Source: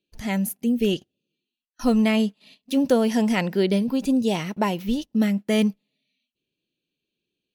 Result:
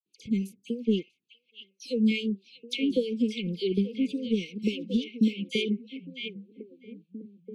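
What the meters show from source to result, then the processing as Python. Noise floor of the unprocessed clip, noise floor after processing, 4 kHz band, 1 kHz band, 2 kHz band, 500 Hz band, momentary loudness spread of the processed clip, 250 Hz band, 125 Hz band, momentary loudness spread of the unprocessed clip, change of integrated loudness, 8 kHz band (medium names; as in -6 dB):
under -85 dBFS, -77 dBFS, -2.0 dB, under -40 dB, -6.5 dB, -7.0 dB, 19 LU, -6.0 dB, -6.0 dB, 7 LU, -6.5 dB, under -10 dB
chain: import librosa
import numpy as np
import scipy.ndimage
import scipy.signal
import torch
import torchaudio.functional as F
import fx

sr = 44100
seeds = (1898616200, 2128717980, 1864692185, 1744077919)

p1 = scipy.signal.sosfilt(scipy.signal.butter(2, 120.0, 'highpass', fs=sr, output='sos'), x)
p2 = fx.dynamic_eq(p1, sr, hz=3500.0, q=3.2, threshold_db=-46.0, ratio=4.0, max_db=5)
p3 = fx.transient(p2, sr, attack_db=5, sustain_db=-4)
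p4 = fx.rider(p3, sr, range_db=10, speed_s=0.5)
p5 = p3 + (p4 * 10.0 ** (-2.5 / 20.0))
p6 = fx.harmonic_tremolo(p5, sr, hz=3.5, depth_pct=100, crossover_hz=440.0)
p7 = fx.brickwall_bandstop(p6, sr, low_hz=530.0, high_hz=2100.0)
p8 = fx.air_absorb(p7, sr, metres=91.0)
p9 = fx.dispersion(p8, sr, late='lows', ms=60.0, hz=2100.0)
p10 = p9 + fx.echo_stepped(p9, sr, ms=644, hz=2600.0, octaves=-1.4, feedback_pct=70, wet_db=-5.0, dry=0)
y = p10 * 10.0 ** (-6.0 / 20.0)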